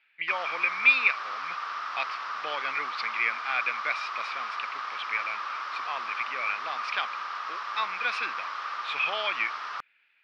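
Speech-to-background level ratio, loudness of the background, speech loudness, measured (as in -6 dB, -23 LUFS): 5.0 dB, -34.0 LUFS, -29.0 LUFS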